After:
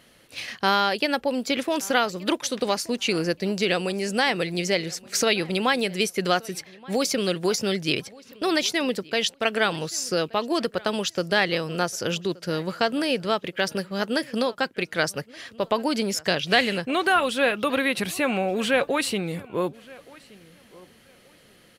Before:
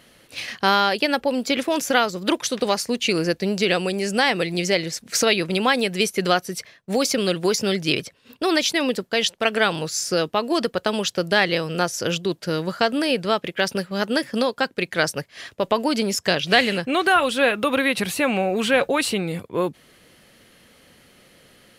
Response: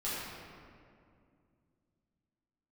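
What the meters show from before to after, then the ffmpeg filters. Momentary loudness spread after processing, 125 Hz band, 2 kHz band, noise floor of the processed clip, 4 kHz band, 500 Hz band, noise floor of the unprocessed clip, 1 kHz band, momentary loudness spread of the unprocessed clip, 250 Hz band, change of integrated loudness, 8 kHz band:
7 LU, −3.0 dB, −3.0 dB, −55 dBFS, −3.0 dB, −3.0 dB, −55 dBFS, −3.0 dB, 7 LU, −3.0 dB, −3.0 dB, −3.0 dB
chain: -filter_complex "[0:a]asplit=2[link_01][link_02];[link_02]adelay=1175,lowpass=frequency=4800:poles=1,volume=-23dB,asplit=2[link_03][link_04];[link_04]adelay=1175,lowpass=frequency=4800:poles=1,volume=0.23[link_05];[link_01][link_03][link_05]amix=inputs=3:normalize=0,volume=-3dB"

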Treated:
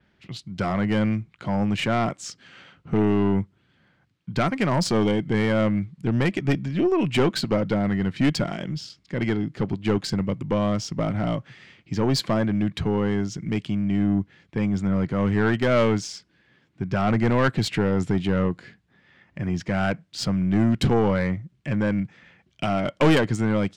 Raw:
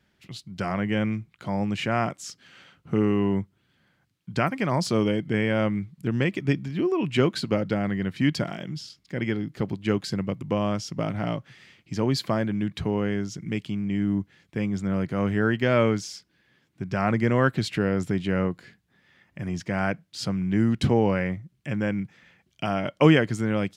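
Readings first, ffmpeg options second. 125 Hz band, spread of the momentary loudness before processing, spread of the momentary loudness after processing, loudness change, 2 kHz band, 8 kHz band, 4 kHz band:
+2.5 dB, 11 LU, 10 LU, +2.0 dB, +0.5 dB, +3.0 dB, +3.0 dB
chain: -af "adynamicsmooth=sensitivity=3:basefreq=4900,adynamicequalizer=threshold=0.00158:dfrequency=8500:dqfactor=1.1:tfrequency=8500:tqfactor=1.1:attack=5:release=100:ratio=0.375:range=3.5:mode=boostabove:tftype=bell,aeval=exprs='(tanh(7.94*val(0)+0.25)-tanh(0.25))/7.94':channel_layout=same,volume=5dB"

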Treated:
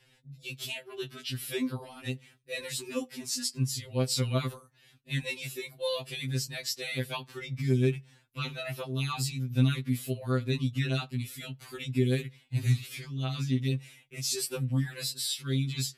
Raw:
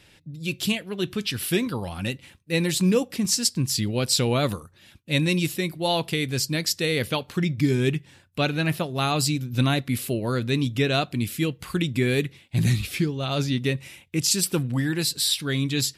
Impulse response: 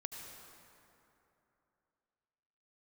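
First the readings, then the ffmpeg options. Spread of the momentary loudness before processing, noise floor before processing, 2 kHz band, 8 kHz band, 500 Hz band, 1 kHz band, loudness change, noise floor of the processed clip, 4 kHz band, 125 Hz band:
7 LU, −55 dBFS, −9.5 dB, −9.0 dB, −8.5 dB, −11.5 dB, −7.5 dB, −64 dBFS, −9.0 dB, −4.5 dB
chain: -af "afftfilt=real='re*2.45*eq(mod(b,6),0)':imag='im*2.45*eq(mod(b,6),0)':win_size=2048:overlap=0.75,volume=-6.5dB"

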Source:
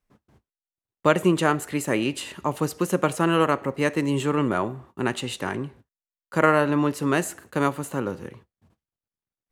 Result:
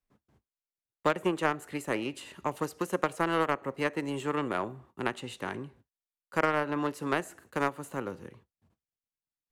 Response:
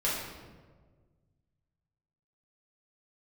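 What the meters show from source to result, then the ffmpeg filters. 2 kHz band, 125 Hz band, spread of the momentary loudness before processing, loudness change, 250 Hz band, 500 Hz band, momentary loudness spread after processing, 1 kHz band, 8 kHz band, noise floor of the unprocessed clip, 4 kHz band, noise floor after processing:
−5.5 dB, −12.0 dB, 10 LU, −8.0 dB, −9.5 dB, −7.5 dB, 10 LU, −6.0 dB, −12.0 dB, below −85 dBFS, −8.5 dB, below −85 dBFS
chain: -filter_complex "[0:a]aeval=exprs='0.794*(cos(1*acos(clip(val(0)/0.794,-1,1)))-cos(1*PI/2))+0.0631*(cos(3*acos(clip(val(0)/0.794,-1,1)))-cos(3*PI/2))+0.0447*(cos(7*acos(clip(val(0)/0.794,-1,1)))-cos(7*PI/2))':channel_layout=same,acrossover=split=300|2400[link_01][link_02][link_03];[link_01]acompressor=threshold=-39dB:ratio=4[link_04];[link_02]acompressor=threshold=-23dB:ratio=4[link_05];[link_03]acompressor=threshold=-44dB:ratio=4[link_06];[link_04][link_05][link_06]amix=inputs=3:normalize=0"

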